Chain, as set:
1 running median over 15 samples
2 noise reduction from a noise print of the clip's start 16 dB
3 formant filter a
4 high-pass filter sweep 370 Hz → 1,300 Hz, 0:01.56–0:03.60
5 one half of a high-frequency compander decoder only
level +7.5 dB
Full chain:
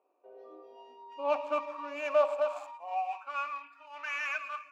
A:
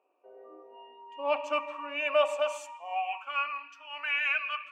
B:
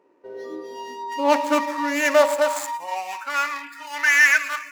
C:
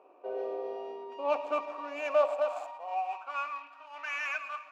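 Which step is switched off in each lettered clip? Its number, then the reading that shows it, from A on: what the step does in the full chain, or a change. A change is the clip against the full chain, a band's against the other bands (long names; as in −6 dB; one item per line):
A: 1, 4 kHz band +10.5 dB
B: 3, 500 Hz band −9.0 dB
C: 2, 250 Hz band +1.5 dB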